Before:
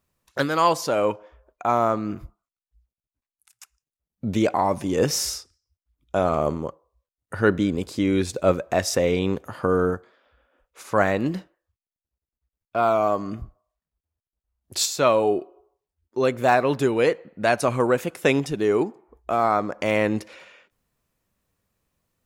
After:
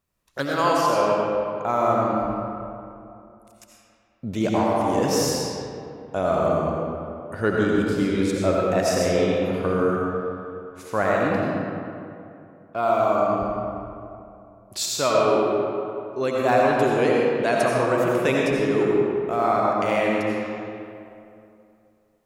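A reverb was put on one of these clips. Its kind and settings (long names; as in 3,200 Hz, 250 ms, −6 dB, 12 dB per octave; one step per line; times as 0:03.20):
comb and all-pass reverb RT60 2.7 s, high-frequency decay 0.55×, pre-delay 45 ms, DRR −3.5 dB
level −4 dB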